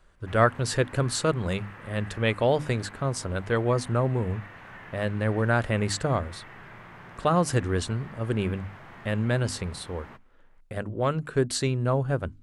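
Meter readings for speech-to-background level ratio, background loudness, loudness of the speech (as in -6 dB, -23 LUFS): 18.5 dB, -46.0 LUFS, -27.5 LUFS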